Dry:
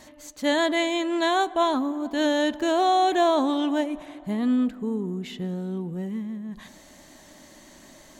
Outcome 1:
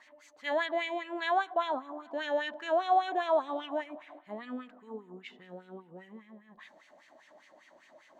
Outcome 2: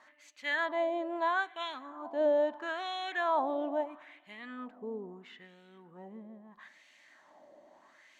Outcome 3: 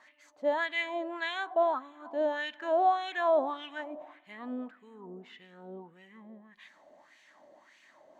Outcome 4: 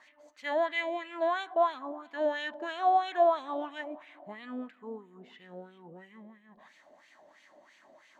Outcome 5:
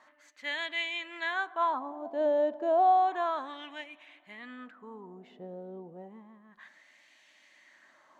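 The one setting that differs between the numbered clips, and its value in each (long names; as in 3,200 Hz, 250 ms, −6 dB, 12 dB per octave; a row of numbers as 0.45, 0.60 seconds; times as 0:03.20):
LFO wah, speed: 5, 0.76, 1.7, 3, 0.31 Hertz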